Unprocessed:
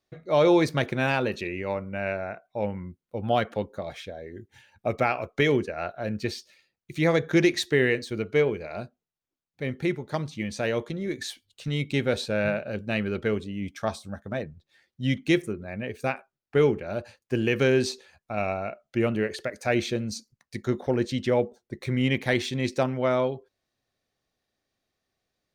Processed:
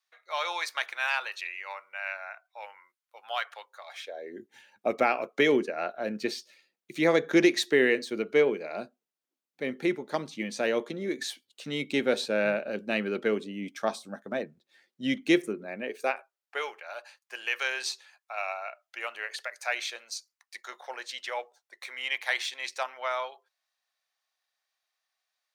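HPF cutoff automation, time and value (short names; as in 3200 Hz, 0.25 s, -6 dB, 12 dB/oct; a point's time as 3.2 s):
HPF 24 dB/oct
3.87 s 950 Hz
4.35 s 220 Hz
15.69 s 220 Hz
16.7 s 810 Hz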